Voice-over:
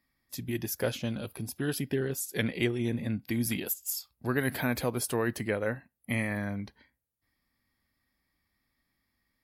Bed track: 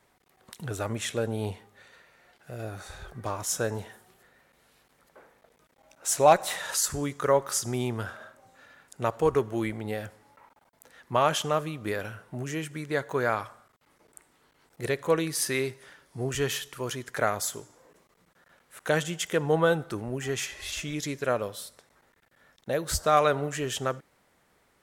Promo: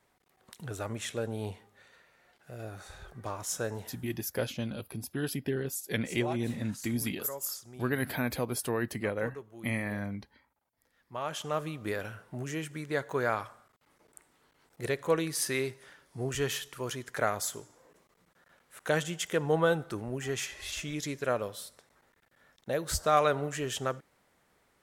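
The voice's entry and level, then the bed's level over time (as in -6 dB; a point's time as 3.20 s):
3.55 s, -2.0 dB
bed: 4.12 s -5 dB
4.38 s -19 dB
10.94 s -19 dB
11.66 s -3 dB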